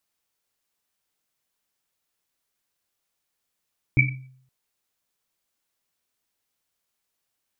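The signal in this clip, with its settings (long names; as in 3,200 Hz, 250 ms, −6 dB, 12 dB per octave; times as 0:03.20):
drum after Risset length 0.52 s, pitch 130 Hz, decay 0.65 s, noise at 2,300 Hz, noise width 110 Hz, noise 45%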